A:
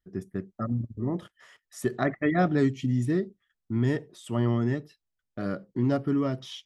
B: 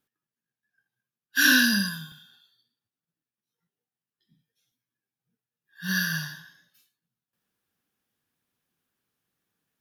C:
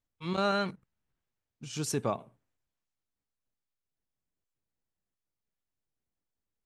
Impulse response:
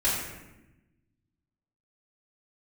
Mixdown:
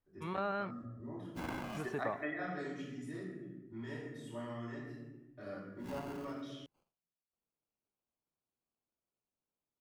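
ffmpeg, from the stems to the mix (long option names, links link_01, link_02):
-filter_complex "[0:a]lowshelf=frequency=200:gain=-11,volume=-9dB,asplit=2[link_01][link_02];[link_02]volume=-12.5dB[link_03];[1:a]highpass=180,acrusher=samples=24:mix=1:aa=0.000001,volume=-16dB[link_04];[2:a]lowpass=1900,volume=0.5dB,asplit=2[link_05][link_06];[link_06]apad=whole_len=293674[link_07];[link_01][link_07]sidechaingate=range=-33dB:threshold=-52dB:ratio=16:detection=peak[link_08];[3:a]atrim=start_sample=2205[link_09];[link_03][link_09]afir=irnorm=-1:irlink=0[link_10];[link_08][link_04][link_05][link_10]amix=inputs=4:normalize=0,acrossover=split=530|2600[link_11][link_12][link_13];[link_11]acompressor=threshold=-43dB:ratio=4[link_14];[link_12]acompressor=threshold=-36dB:ratio=4[link_15];[link_13]acompressor=threshold=-58dB:ratio=4[link_16];[link_14][link_15][link_16]amix=inputs=3:normalize=0"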